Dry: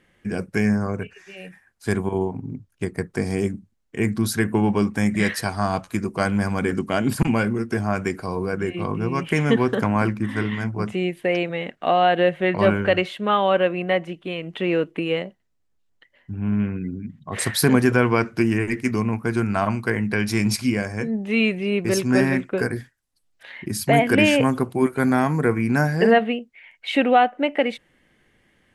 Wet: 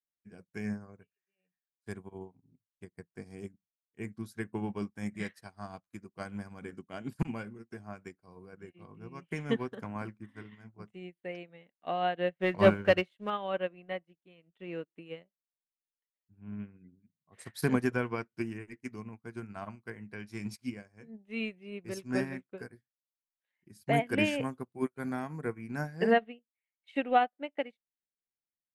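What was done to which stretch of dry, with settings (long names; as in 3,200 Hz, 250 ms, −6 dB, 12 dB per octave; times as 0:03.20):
0:12.38–0:13.30: leveller curve on the samples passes 1
whole clip: parametric band 170 Hz +3 dB 0.21 octaves; expander for the loud parts 2.5 to 1, over −39 dBFS; level −5 dB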